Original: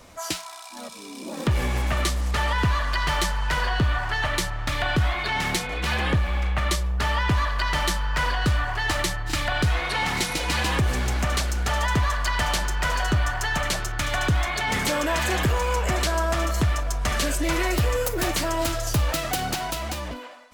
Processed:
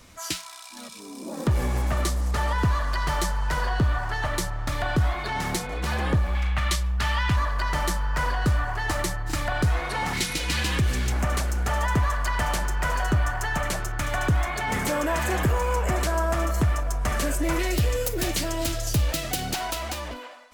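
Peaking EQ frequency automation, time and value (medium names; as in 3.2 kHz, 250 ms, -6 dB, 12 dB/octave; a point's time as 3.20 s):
peaking EQ -8.5 dB 1.5 oct
650 Hz
from 1.00 s 2.8 kHz
from 6.35 s 440 Hz
from 7.36 s 3.2 kHz
from 10.13 s 790 Hz
from 11.12 s 3.8 kHz
from 17.59 s 1.1 kHz
from 19.54 s 140 Hz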